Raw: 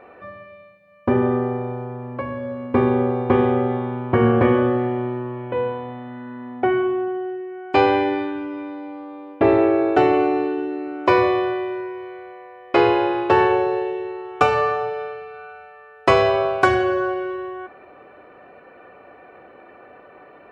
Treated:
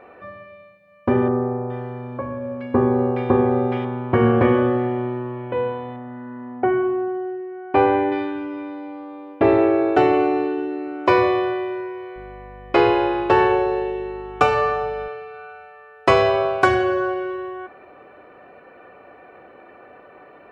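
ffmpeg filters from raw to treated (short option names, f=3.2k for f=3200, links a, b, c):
-filter_complex "[0:a]asettb=1/sr,asplit=3[a][b][c];[a]atrim=end=1.284[d];[b]atrim=start=1.28:end=3.85,asetpts=PTS-STARTPTS,afade=t=in:d=0.004:c=qsin,afade=t=out:st=2.566:d=0.004:c=qsin,acrossover=split=1700[e][f];[f]adelay=420[g];[e][g]amix=inputs=2:normalize=0,atrim=end_sample=113337[h];[c]atrim=start=3.846[i];[d][h]acrossfade=d=0.004:c1=hsin:c2=qsin[j];[j][i]acrossfade=d=0.004:c1=qsin:c2=hsin,asettb=1/sr,asplit=3[k][l][m];[k]atrim=end=5.964[n];[l]atrim=start=5.96:end=8.12,asetpts=PTS-STARTPTS,afade=t=in:d=0.004:c=qsin,afade=t=out:st=2.156:d=0.004:c=qsin,lowpass=1.8k[o];[m]atrim=start=8.116[p];[n][o]acrossfade=d=0.004:c1=hsin:c2=qsin[q];[q][p]acrossfade=d=0.004:c1=qsin:c2=hsin,asettb=1/sr,asplit=3[r][s][t];[r]atrim=end=12.164[u];[s]atrim=start=12.16:end=15.08,asetpts=PTS-STARTPTS,afade=t=in:d=0.004:c=qsin,afade=t=out:st=2.916:d=0.004:c=qsin,aeval=exprs='val(0)+0.00891*(sin(2*PI*50*n/s)+sin(2*PI*2*50*n/s)/2+sin(2*PI*3*50*n/s)/3+sin(2*PI*4*50*n/s)/4+sin(2*PI*5*50*n/s)/5)':c=same[v];[t]atrim=start=15.076[w];[u][v]acrossfade=d=0.004:c1=hsin:c2=qsin[x];[x][w]acrossfade=d=0.004:c1=qsin:c2=hsin"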